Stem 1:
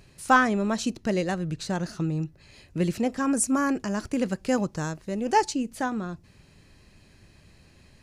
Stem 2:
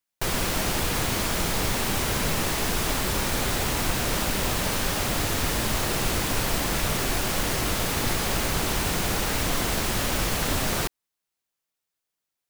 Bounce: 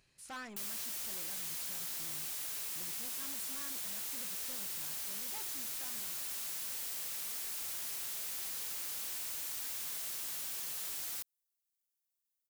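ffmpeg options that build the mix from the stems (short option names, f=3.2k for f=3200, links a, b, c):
-filter_complex "[0:a]asoftclip=type=tanh:threshold=-23.5dB,tiltshelf=f=890:g=-5.5,volume=-16.5dB[a];[1:a]aderivative,adelay=350,volume=-5dB[b];[a][b]amix=inputs=2:normalize=0,asoftclip=type=tanh:threshold=-38dB"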